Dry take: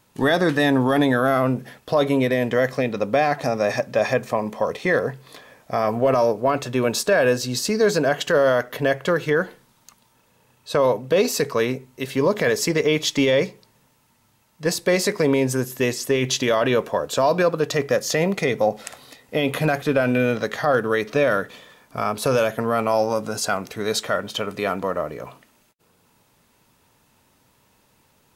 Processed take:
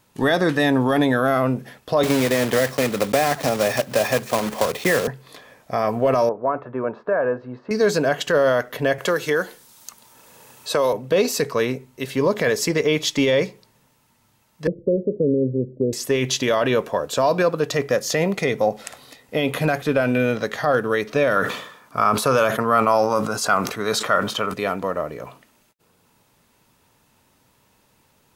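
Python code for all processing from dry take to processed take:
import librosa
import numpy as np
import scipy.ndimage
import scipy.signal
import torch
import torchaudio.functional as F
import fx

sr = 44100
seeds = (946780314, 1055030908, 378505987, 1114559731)

y = fx.chain(x, sr, fx.block_float(bits=3),
    fx.highpass(hz=58.0, slope=12),
    fx.band_squash(depth_pct=70), at=(2.03, 5.08))
y = fx.chain(y, sr, fx.lowpass(hz=1300.0, slope=24),
    fx.tilt_eq(slope=3.0), at=(6.29, 7.71))
y = fx.chain(y, sr, fx.bass_treble(bass_db=-7, treble_db=10),
    fx.band_squash(depth_pct=40), at=(8.98, 10.93))
y = fx.chain(y, sr, fx.steep_lowpass(hz=570.0, slope=72),
    fx.band_squash(depth_pct=40), at=(14.67, 15.93))
y = fx.chain(y, sr, fx.highpass(hz=83.0, slope=12),
    fx.peak_eq(hz=1200.0, db=9.0, octaves=0.61),
    fx.sustainer(db_per_s=78.0), at=(21.36, 24.54))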